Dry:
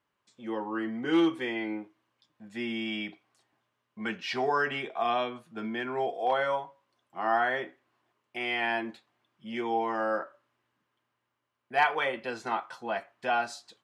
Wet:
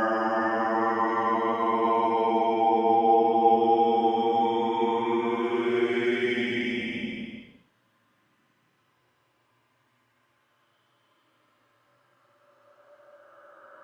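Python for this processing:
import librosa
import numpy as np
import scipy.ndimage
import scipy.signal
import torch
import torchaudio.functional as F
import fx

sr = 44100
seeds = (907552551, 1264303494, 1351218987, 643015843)

y = fx.reverse_delay(x, sr, ms=596, wet_db=-0.5)
y = fx.paulstretch(y, sr, seeds[0], factor=16.0, window_s=0.1, from_s=10.29)
y = y * 10.0 ** (6.5 / 20.0)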